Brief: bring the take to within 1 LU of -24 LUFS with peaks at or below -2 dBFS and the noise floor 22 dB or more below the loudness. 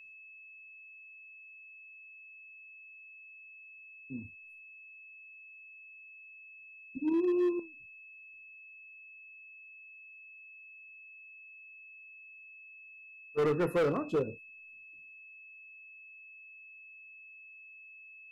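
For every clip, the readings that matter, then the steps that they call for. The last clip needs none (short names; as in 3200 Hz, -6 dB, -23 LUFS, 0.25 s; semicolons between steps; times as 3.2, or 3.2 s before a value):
clipped 0.8%; flat tops at -24.5 dBFS; steady tone 2600 Hz; tone level -50 dBFS; loudness -32.5 LUFS; peak -24.5 dBFS; loudness target -24.0 LUFS
-> clip repair -24.5 dBFS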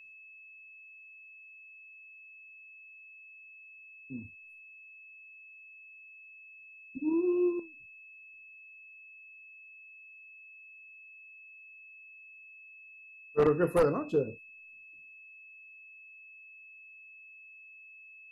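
clipped 0.0%; steady tone 2600 Hz; tone level -50 dBFS
-> notch 2600 Hz, Q 30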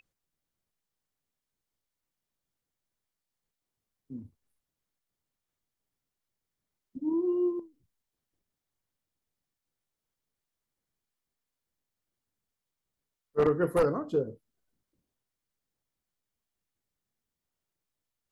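steady tone none; loudness -29.5 LUFS; peak -15.5 dBFS; loudness target -24.0 LUFS
-> gain +5.5 dB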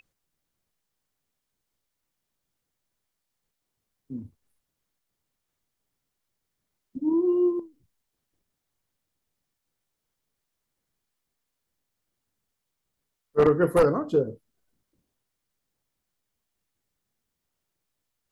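loudness -24.0 LUFS; peak -10.0 dBFS; noise floor -82 dBFS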